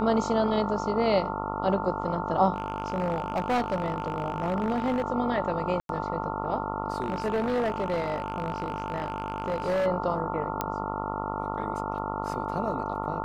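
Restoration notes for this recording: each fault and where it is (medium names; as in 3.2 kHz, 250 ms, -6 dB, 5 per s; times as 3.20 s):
buzz 50 Hz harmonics 28 -33 dBFS
whine 890 Hz -34 dBFS
2.54–5.02 s: clipped -22 dBFS
5.80–5.89 s: dropout 92 ms
7.00–9.87 s: clipped -23 dBFS
10.61 s: pop -12 dBFS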